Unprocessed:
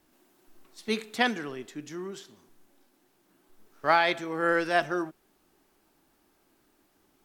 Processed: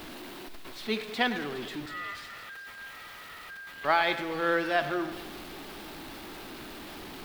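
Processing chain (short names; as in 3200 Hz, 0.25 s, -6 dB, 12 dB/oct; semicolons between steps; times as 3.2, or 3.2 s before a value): zero-crossing step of -33 dBFS; requantised 8-bit, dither triangular; 1.86–3.85 ring modulator 1600 Hz; resonant high shelf 5100 Hz -8 dB, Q 1.5; on a send: split-band echo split 2900 Hz, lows 0.106 s, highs 0.415 s, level -12.5 dB; on the sum: gain -3.5 dB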